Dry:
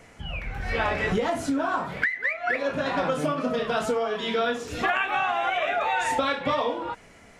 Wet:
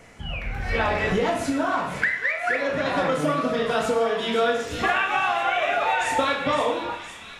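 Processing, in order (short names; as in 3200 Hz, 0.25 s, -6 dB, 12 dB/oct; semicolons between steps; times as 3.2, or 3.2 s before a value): on a send: thin delay 0.512 s, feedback 69%, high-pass 2400 Hz, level -9.5 dB; on the sum: Schroeder reverb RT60 0.68 s, combs from 27 ms, DRR 6 dB; gain +1.5 dB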